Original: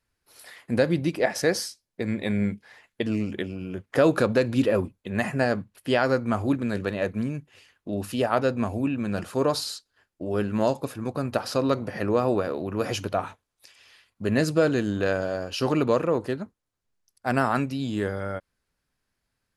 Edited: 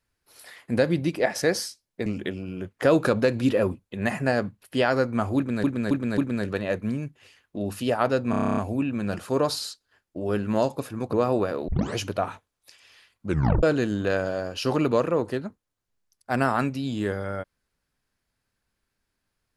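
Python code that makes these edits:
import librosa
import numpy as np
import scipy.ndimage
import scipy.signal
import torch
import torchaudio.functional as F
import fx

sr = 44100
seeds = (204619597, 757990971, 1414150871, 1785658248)

y = fx.edit(x, sr, fx.cut(start_s=2.06, length_s=1.13),
    fx.repeat(start_s=6.5, length_s=0.27, count=4),
    fx.stutter(start_s=8.62, slice_s=0.03, count=10),
    fx.cut(start_s=11.18, length_s=0.91),
    fx.tape_start(start_s=12.64, length_s=0.29),
    fx.tape_stop(start_s=14.23, length_s=0.36), tone=tone)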